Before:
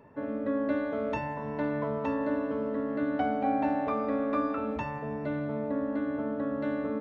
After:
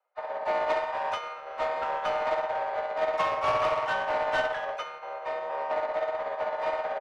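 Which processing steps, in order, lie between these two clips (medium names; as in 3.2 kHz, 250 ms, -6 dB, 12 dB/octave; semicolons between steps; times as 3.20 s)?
mistuned SSB +340 Hz 160–3200 Hz; saturation -27.5 dBFS, distortion -14 dB; harmony voices -5 st -15 dB, +3 st -11 dB, +12 st -14 dB; upward expansion 2.5:1, over -51 dBFS; trim +7 dB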